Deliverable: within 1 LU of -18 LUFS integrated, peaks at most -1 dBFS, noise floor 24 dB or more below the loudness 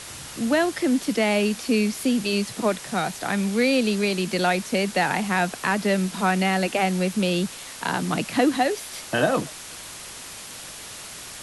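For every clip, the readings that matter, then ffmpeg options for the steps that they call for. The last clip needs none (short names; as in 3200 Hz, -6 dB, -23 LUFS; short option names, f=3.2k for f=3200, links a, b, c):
noise floor -39 dBFS; noise floor target -48 dBFS; loudness -23.5 LUFS; peak -8.0 dBFS; loudness target -18.0 LUFS
-> -af "afftdn=nr=9:nf=-39"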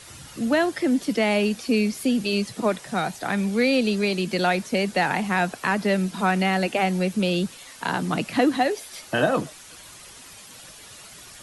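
noise floor -45 dBFS; noise floor target -48 dBFS
-> -af "afftdn=nr=6:nf=-45"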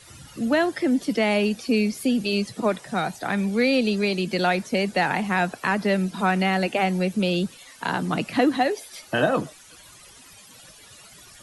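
noise floor -49 dBFS; loudness -23.5 LUFS; peak -8.0 dBFS; loudness target -18.0 LUFS
-> -af "volume=5.5dB"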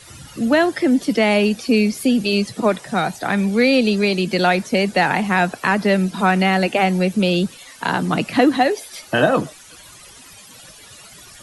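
loudness -18.0 LUFS; peak -2.5 dBFS; noise floor -43 dBFS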